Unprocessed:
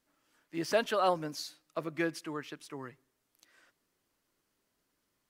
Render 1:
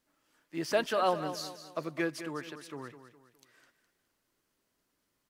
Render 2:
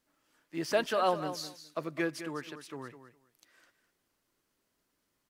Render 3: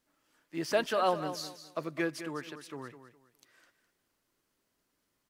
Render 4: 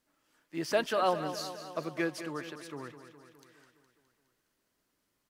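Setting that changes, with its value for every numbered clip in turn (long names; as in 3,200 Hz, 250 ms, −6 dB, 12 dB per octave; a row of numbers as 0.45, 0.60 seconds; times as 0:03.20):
repeating echo, feedback: 39, 17, 26, 62%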